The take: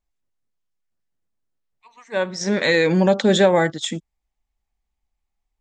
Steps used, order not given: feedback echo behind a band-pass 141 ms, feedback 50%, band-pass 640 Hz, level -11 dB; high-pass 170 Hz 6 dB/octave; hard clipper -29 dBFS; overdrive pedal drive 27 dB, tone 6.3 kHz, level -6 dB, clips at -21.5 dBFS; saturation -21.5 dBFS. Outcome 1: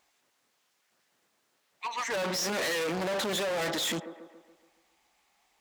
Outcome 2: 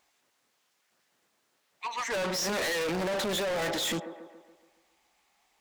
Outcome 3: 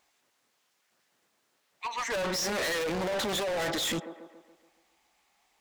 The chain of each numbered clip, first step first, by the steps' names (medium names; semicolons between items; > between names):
saturation > overdrive pedal > feedback echo behind a band-pass > hard clipper > high-pass; overdrive pedal > feedback echo behind a band-pass > saturation > high-pass > hard clipper; saturation > high-pass > overdrive pedal > feedback echo behind a band-pass > hard clipper